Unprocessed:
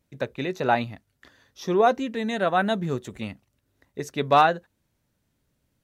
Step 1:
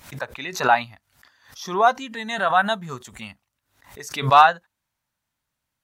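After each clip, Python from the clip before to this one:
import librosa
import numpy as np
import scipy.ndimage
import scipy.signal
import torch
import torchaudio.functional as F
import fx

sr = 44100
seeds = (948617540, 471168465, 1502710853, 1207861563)

y = fx.noise_reduce_blind(x, sr, reduce_db=7)
y = fx.low_shelf_res(y, sr, hz=630.0, db=-10.5, q=1.5)
y = fx.pre_swell(y, sr, db_per_s=120.0)
y = y * librosa.db_to_amplitude(4.5)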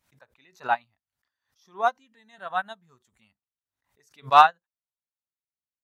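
y = fx.upward_expand(x, sr, threshold_db=-27.0, expansion=2.5)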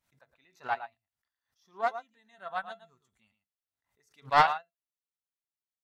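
y = fx.comb_fb(x, sr, f0_hz=680.0, decay_s=0.16, harmonics='all', damping=0.0, mix_pct=60)
y = y + 10.0 ** (-11.5 / 20.0) * np.pad(y, (int(112 * sr / 1000.0), 0))[:len(y)]
y = fx.doppler_dist(y, sr, depth_ms=0.35)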